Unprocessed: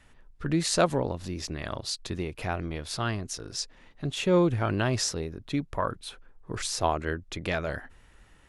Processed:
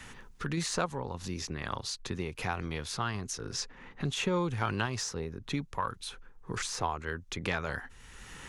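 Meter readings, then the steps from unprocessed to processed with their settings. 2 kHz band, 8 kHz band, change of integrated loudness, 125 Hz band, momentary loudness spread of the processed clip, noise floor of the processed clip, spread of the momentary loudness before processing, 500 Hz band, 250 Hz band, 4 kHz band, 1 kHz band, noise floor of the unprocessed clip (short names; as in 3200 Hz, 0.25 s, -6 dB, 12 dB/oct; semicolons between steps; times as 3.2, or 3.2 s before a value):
-1.5 dB, -4.0 dB, -5.0 dB, -5.0 dB, 10 LU, -53 dBFS, 11 LU, -8.0 dB, -6.5 dB, -4.0 dB, -3.0 dB, -57 dBFS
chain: thirty-one-band EQ 315 Hz -6 dB, 630 Hz -11 dB, 6300 Hz +5 dB; in parallel at -8 dB: soft clip -21 dBFS, distortion -15 dB; on the sum: dynamic EQ 940 Hz, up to +7 dB, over -42 dBFS, Q 1; random-step tremolo; three-band squash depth 70%; gain -4.5 dB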